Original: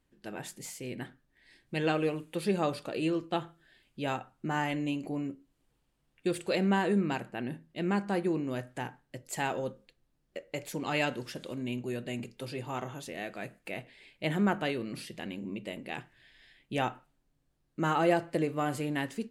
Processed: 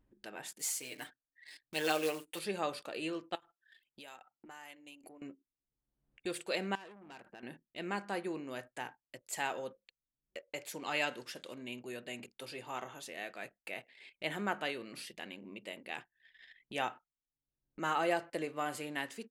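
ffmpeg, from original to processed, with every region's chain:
ffmpeg -i in.wav -filter_complex "[0:a]asettb=1/sr,asplit=3[link_01][link_02][link_03];[link_01]atrim=end=0.594[link_04];[link_02]atrim=start=0.59:end=2.39,asetpts=PTS-STARTPTS,afade=type=in:duration=0.004:curve=qsin,afade=type=out:start_time=1.796:duration=0.004:curve=qsin,bass=frequency=250:gain=-7,treble=frequency=4000:gain=8,aecho=1:1:6.7:0.74,atrim=end_sample=79380,acrusher=bits=4:mode=log:mix=0:aa=0.000001[link_05];[link_03]atrim=start=2.386[link_06];[link_04][link_05]acrossfade=duration=0.004:curve1=hsin:curve2=qsin[link_07];[link_07][link_06]acrossfade=duration=0.004:curve1=qsin:curve2=hsin,asettb=1/sr,asplit=3[link_08][link_09][link_10];[link_08]atrim=end=3.354[link_11];[link_09]atrim=start=3.35:end=5.22,asetpts=PTS-STARTPTS,afade=type=in:duration=0.004:curve=qsin,afade=type=out:start_time=1.866:duration=0.004:curve=qsin,acompressor=threshold=-47dB:ratio=4:attack=3.2:release=140:knee=1:detection=peak,aemphasis=mode=production:type=bsi[link_12];[link_10]atrim=start=5.216[link_13];[link_11][link_12]acrossfade=duration=0.004:curve1=hsin:curve2=qsin[link_14];[link_14][link_13]acrossfade=duration=0.004:curve1=qsin:curve2=hsin,asettb=1/sr,asplit=3[link_15][link_16][link_17];[link_15]atrim=end=6.754[link_18];[link_16]atrim=start=6.75:end=7.43,asetpts=PTS-STARTPTS,afade=type=in:duration=0.004:curve=qsin,afade=type=out:start_time=0.676:duration=0.004:curve=qsin,aeval=exprs='(tanh(35.5*val(0)+0.15)-tanh(0.15))/35.5':channel_layout=same,acompressor=threshold=-43dB:ratio=10:attack=3.2:release=140:knee=1:detection=peak[link_19];[link_17]atrim=start=7.426[link_20];[link_18][link_19]acrossfade=duration=0.004:curve1=hsin:curve2=qsin[link_21];[link_21][link_20]acrossfade=duration=0.004:curve1=qsin:curve2=hsin,highpass=frequency=750:poles=1,anlmdn=0.000158,acompressor=mode=upward:threshold=-45dB:ratio=2.5,volume=-1.5dB" out.wav

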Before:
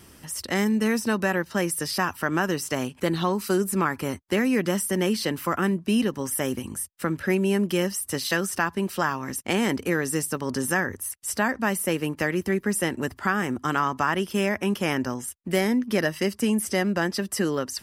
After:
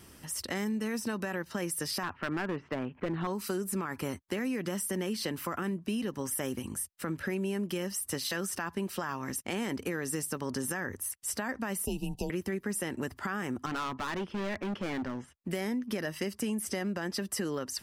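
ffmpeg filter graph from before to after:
ffmpeg -i in.wav -filter_complex "[0:a]asettb=1/sr,asplit=3[link_01][link_02][link_03];[link_01]atrim=end=2.034[link_04];[link_02]atrim=start=2.03:end=3.27,asetpts=PTS-STARTPTS,afade=type=in:duration=0.004:curve=qsin,afade=type=out:start_time=1.236:duration=0.004:curve=qsin,lowpass=frequency=2300:width=0.5412,lowpass=frequency=2300:width=1.3066,asoftclip=type=hard:threshold=-21dB[link_05];[link_03]atrim=start=3.266[link_06];[link_04][link_05]acrossfade=duration=0.004:curve1=hsin:curve2=qsin[link_07];[link_07][link_06]acrossfade=duration=0.004:curve1=qsin:curve2=hsin,asettb=1/sr,asplit=3[link_08][link_09][link_10];[link_08]atrim=end=11.854[link_11];[link_09]atrim=start=11.85:end=12.3,asetpts=PTS-STARTPTS,afade=type=in:duration=0.004:curve=qsin,afade=type=out:start_time=0.446:duration=0.004:curve=qsin,afreqshift=-130,asuperstop=centerf=1600:order=20:qfactor=0.96[link_12];[link_10]atrim=start=12.296[link_13];[link_11][link_12]acrossfade=duration=0.004:curve1=hsin:curve2=qsin[link_14];[link_14][link_13]acrossfade=duration=0.004:curve1=qsin:curve2=hsin,asettb=1/sr,asplit=3[link_15][link_16][link_17];[link_15]atrim=end=13.664[link_18];[link_16]atrim=start=13.66:end=15.41,asetpts=PTS-STARTPTS,afade=type=in:duration=0.004:curve=qsin,afade=type=out:start_time=1.746:duration=0.004:curve=qsin,lowpass=2600,asoftclip=type=hard:threshold=-27dB[link_19];[link_17]atrim=start=15.406[link_20];[link_18][link_19]acrossfade=duration=0.004:curve1=hsin:curve2=qsin[link_21];[link_21][link_20]acrossfade=duration=0.004:curve1=qsin:curve2=hsin,alimiter=limit=-16dB:level=0:latency=1:release=19,acompressor=threshold=-26dB:ratio=6,volume=-3.5dB" out.wav

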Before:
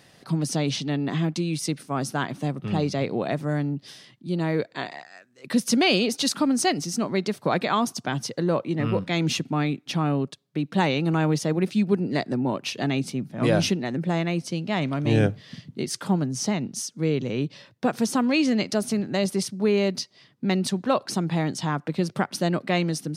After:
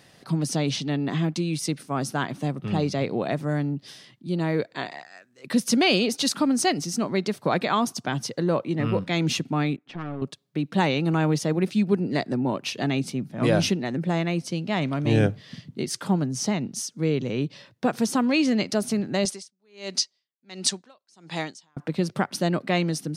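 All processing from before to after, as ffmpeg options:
ffmpeg -i in.wav -filter_complex "[0:a]asettb=1/sr,asplit=3[link_01][link_02][link_03];[link_01]atrim=end=9.764[link_04];[link_02]atrim=start=9.76:end=10.22,asetpts=PTS-STARTPTS,afade=type=in:duration=0.004:curve=qsin,afade=type=out:start_time=0.456:duration=0.004:curve=qsin,lowpass=2000,aeval=exprs='(tanh(17.8*val(0)+0.75)-tanh(0.75))/17.8':channel_layout=same,lowshelf=frequency=190:gain=-9.5[link_05];[link_03]atrim=start=10.216[link_06];[link_04][link_05]acrossfade=duration=0.004:curve1=hsin:curve2=qsin[link_07];[link_07][link_06]acrossfade=duration=0.004:curve1=qsin:curve2=hsin,asettb=1/sr,asplit=3[link_08][link_09][link_10];[link_08]atrim=end=19.254[link_11];[link_09]atrim=start=19.25:end=21.77,asetpts=PTS-STARTPTS,afade=type=in:duration=0.004:curve=qsin,afade=type=out:start_time=2.516:duration=0.004:curve=qsin,lowpass=frequency=7800:width=0.5412,lowpass=frequency=7800:width=1.3066,aemphasis=mode=production:type=riaa,aeval=exprs='val(0)*pow(10,-40*(0.5-0.5*cos(2*PI*1.4*n/s))/20)':channel_layout=same[link_12];[link_10]atrim=start=21.766[link_13];[link_11][link_12]acrossfade=duration=0.004:curve1=hsin:curve2=qsin[link_14];[link_14][link_13]acrossfade=duration=0.004:curve1=qsin:curve2=hsin" out.wav

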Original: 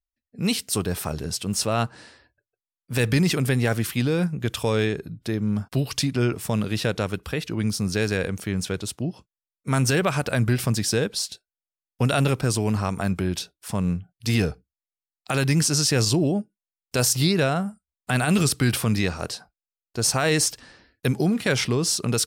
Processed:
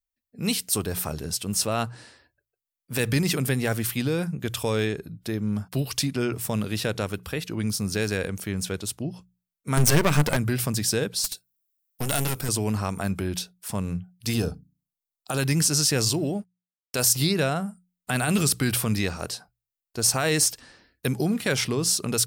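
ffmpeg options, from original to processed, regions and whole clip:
ffmpeg -i in.wav -filter_complex "[0:a]asettb=1/sr,asplit=3[link_01][link_02][link_03];[link_01]atrim=end=9.774[link_04];[link_02]atrim=start=9.77:end=10.37,asetpts=PTS-STARTPTS,afade=type=in:duration=0.004:curve=qsin,afade=type=out:start_time=0.596:duration=0.004:curve=qsin,equalizer=frequency=150:width_type=o:width=0.26:gain=8.5,acontrast=77,aeval=exprs='clip(val(0),-1,0.0501)':channel_layout=same[link_05];[link_03]atrim=start=10.366[link_06];[link_04][link_05]acrossfade=duration=0.004:curve1=hsin:curve2=qsin[link_07];[link_07][link_06]acrossfade=duration=0.004:curve1=qsin:curve2=hsin,asettb=1/sr,asplit=3[link_08][link_09][link_10];[link_08]atrim=end=11.244[link_11];[link_09]atrim=start=11.24:end=12.49,asetpts=PTS-STARTPTS,afade=type=in:duration=0.004:curve=qsin,afade=type=out:start_time=1.246:duration=0.004:curve=qsin,aemphasis=mode=production:type=50kf,aeval=exprs='clip(val(0),-1,0.0316)':channel_layout=same[link_12];[link_10]atrim=start=12.486[link_13];[link_11][link_12]acrossfade=duration=0.004:curve1=hsin:curve2=qsin[link_14];[link_14][link_13]acrossfade=duration=0.004:curve1=qsin:curve2=hsin,asettb=1/sr,asplit=3[link_15][link_16][link_17];[link_15]atrim=end=14.334[link_18];[link_16]atrim=start=14.33:end=15.39,asetpts=PTS-STARTPTS,afade=type=in:duration=0.004:curve=qsin,afade=type=out:start_time=1.056:duration=0.004:curve=qsin,equalizer=frequency=2100:width_type=o:width=0.56:gain=-13,bandreject=frequency=50:width_type=h:width=6,bandreject=frequency=100:width_type=h:width=6,bandreject=frequency=150:width_type=h:width=6,bandreject=frequency=200:width_type=h:width=6,bandreject=frequency=250:width_type=h:width=6,bandreject=frequency=300:width_type=h:width=6[link_19];[link_17]atrim=start=15.386[link_20];[link_18][link_19]acrossfade=duration=0.004:curve1=hsin:curve2=qsin[link_21];[link_21][link_20]acrossfade=duration=0.004:curve1=qsin:curve2=hsin,asettb=1/sr,asplit=3[link_22][link_23][link_24];[link_22]atrim=end=16.114[link_25];[link_23]atrim=start=16.11:end=17.07,asetpts=PTS-STARTPTS,afade=type=in:duration=0.004:curve=qsin,afade=type=out:start_time=0.956:duration=0.004:curve=qsin,lowshelf=frequency=480:gain=-3,aeval=exprs='sgn(val(0))*max(abs(val(0))-0.00168,0)':channel_layout=same[link_26];[link_24]atrim=start=17.066[link_27];[link_25][link_26]acrossfade=duration=0.004:curve1=hsin:curve2=qsin[link_28];[link_28][link_27]acrossfade=duration=0.004:curve1=qsin:curve2=hsin,highshelf=frequency=10000:gain=11,bandreject=frequency=60:width_type=h:width=6,bandreject=frequency=120:width_type=h:width=6,bandreject=frequency=180:width_type=h:width=6,volume=-2.5dB" out.wav

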